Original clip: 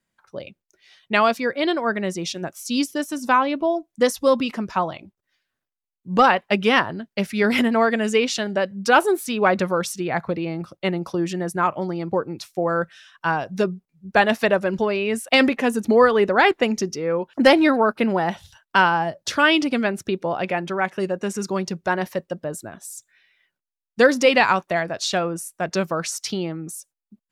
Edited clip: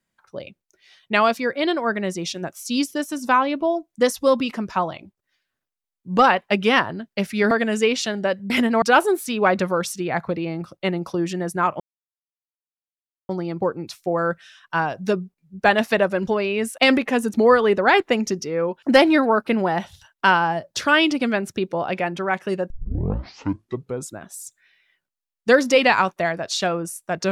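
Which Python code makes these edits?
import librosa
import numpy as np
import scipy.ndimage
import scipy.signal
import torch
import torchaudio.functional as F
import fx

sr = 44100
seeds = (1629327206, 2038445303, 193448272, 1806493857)

y = fx.edit(x, sr, fx.move(start_s=7.51, length_s=0.32, to_s=8.82),
    fx.insert_silence(at_s=11.8, length_s=1.49),
    fx.tape_start(start_s=21.21, length_s=1.5), tone=tone)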